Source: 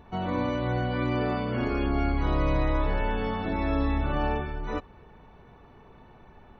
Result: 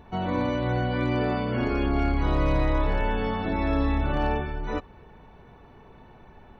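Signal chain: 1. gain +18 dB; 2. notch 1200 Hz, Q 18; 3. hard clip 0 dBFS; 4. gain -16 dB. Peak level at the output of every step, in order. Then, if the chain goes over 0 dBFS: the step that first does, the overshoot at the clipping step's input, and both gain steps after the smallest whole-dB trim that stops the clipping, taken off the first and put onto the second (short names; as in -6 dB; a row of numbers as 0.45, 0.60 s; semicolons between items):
+3.5, +3.5, 0.0, -16.0 dBFS; step 1, 3.5 dB; step 1 +14 dB, step 4 -12 dB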